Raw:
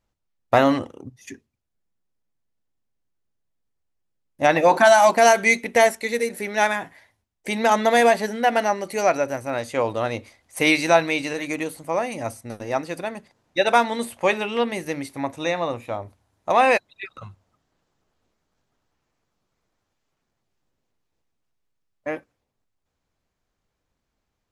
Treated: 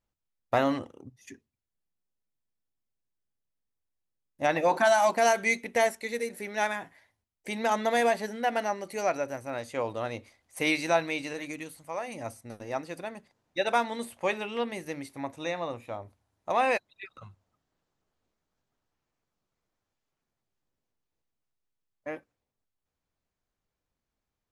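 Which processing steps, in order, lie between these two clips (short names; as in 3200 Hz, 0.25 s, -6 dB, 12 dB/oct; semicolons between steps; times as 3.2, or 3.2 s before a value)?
11.5–12.07 bell 980 Hz -> 170 Hz -9 dB 2 oct; gain -8.5 dB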